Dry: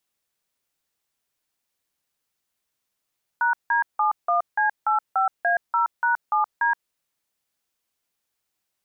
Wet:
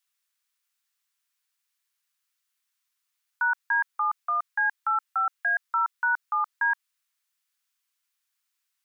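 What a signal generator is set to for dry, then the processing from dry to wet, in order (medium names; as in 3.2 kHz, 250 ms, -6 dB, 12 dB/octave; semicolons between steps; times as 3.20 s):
DTMF "#D71C85A0#7D", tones 123 ms, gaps 168 ms, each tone -20.5 dBFS
high-pass 1.1 kHz 24 dB/octave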